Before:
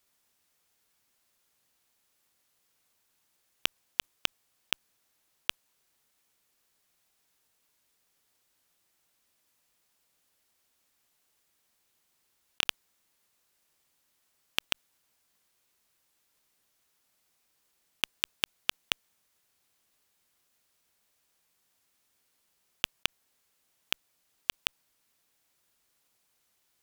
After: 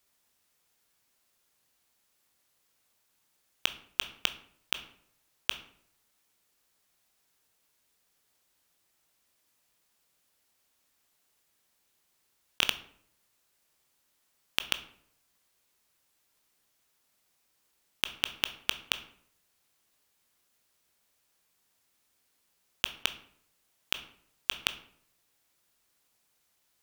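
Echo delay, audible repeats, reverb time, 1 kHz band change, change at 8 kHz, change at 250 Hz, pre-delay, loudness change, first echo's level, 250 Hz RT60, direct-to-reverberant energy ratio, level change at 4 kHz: no echo audible, no echo audible, 0.65 s, +0.5 dB, 0.0 dB, +0.5 dB, 15 ms, +0.5 dB, no echo audible, 0.70 s, 10.0 dB, +0.5 dB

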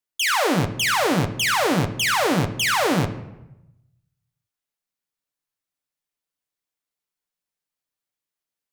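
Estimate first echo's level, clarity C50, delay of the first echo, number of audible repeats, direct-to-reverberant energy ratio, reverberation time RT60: no echo audible, 12.0 dB, no echo audible, no echo audible, 6.0 dB, 0.95 s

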